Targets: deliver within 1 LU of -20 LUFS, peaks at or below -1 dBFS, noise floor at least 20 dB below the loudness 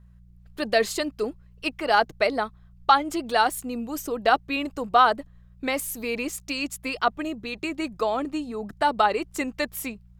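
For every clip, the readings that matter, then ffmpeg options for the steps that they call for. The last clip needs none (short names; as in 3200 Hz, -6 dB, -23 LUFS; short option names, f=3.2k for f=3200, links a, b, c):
hum 60 Hz; harmonics up to 180 Hz; hum level -50 dBFS; loudness -25.5 LUFS; peak -5.0 dBFS; loudness target -20.0 LUFS
-> -af "bandreject=f=60:t=h:w=4,bandreject=f=120:t=h:w=4,bandreject=f=180:t=h:w=4"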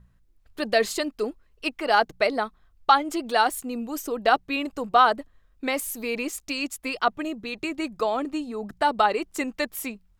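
hum none; loudness -25.5 LUFS; peak -5.0 dBFS; loudness target -20.0 LUFS
-> -af "volume=5.5dB,alimiter=limit=-1dB:level=0:latency=1"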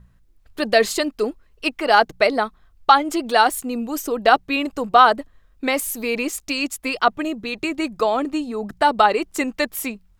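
loudness -20.0 LUFS; peak -1.0 dBFS; noise floor -56 dBFS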